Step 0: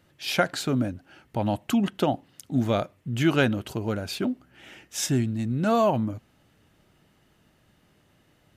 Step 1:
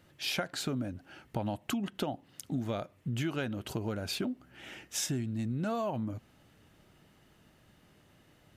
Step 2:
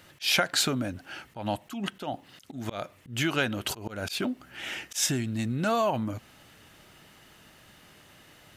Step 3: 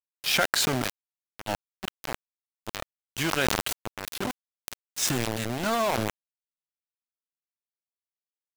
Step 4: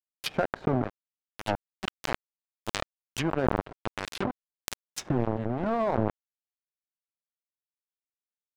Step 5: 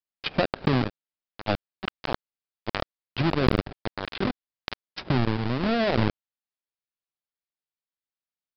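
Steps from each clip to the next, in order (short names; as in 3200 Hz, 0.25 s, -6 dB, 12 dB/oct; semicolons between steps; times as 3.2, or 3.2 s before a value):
compressor 6:1, threshold -31 dBFS, peak gain reduction 14 dB
tilt shelf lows -5 dB, about 670 Hz; auto swell 0.171 s; gain +8 dB
sample gate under -26 dBFS; sustainer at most 22 dB/s
treble ducked by the level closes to 760 Hz, closed at -25 dBFS; power-law curve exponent 1.4; gain +7.5 dB
half-waves squared off; downsampling 11025 Hz; gain -1 dB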